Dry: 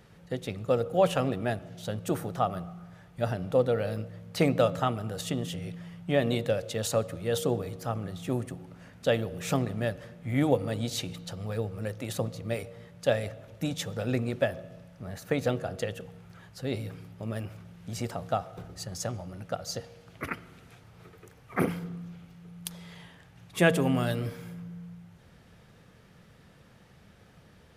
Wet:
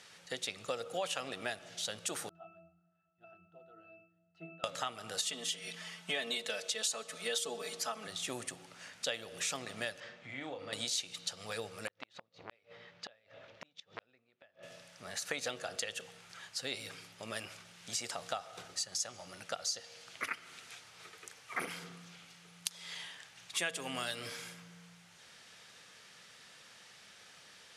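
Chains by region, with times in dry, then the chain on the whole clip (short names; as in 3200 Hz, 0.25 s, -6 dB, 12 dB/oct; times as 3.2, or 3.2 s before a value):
2.29–4.64 high shelf 4600 Hz -8.5 dB + octave resonator E, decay 0.59 s
5.18–8.07 low shelf 120 Hz -11 dB + comb 4.6 ms, depth 99%
10–10.73 compressor 4:1, threshold -34 dBFS + air absorption 160 m + doubler 38 ms -7 dB
11.87–14.63 flipped gate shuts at -23 dBFS, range -34 dB + air absorption 250 m + core saturation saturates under 980 Hz
whole clip: weighting filter ITU-R 468; compressor 4:1, threshold -35 dBFS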